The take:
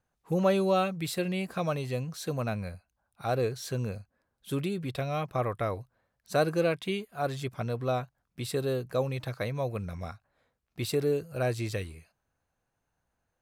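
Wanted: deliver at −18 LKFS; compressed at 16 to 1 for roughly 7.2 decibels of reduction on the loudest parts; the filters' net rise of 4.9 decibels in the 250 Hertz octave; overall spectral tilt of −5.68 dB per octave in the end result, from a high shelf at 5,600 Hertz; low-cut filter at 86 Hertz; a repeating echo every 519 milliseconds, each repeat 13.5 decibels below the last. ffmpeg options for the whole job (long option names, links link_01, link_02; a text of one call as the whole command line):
ffmpeg -i in.wav -af "highpass=86,equalizer=frequency=250:width_type=o:gain=7.5,highshelf=frequency=5600:gain=6,acompressor=threshold=-26dB:ratio=16,aecho=1:1:519|1038:0.211|0.0444,volume=15dB" out.wav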